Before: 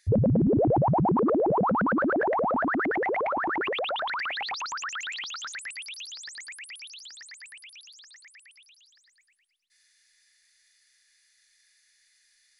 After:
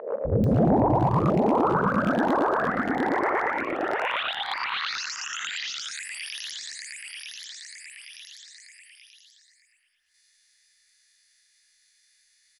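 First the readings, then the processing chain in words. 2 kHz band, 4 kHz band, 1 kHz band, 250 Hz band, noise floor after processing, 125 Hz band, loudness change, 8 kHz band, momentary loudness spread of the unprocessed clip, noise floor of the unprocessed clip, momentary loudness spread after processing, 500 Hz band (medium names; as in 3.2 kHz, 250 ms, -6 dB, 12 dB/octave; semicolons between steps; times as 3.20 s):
+1.5 dB, +4.0 dB, +2.0 dB, +1.5 dB, -65 dBFS, +1.5 dB, +1.0 dB, +4.5 dB, 19 LU, -67 dBFS, 18 LU, +0.5 dB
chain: reverse spectral sustain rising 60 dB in 0.47 s; hard clipper -14.5 dBFS, distortion -21 dB; three bands offset in time mids, lows, highs 250/440 ms, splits 490/1700 Hz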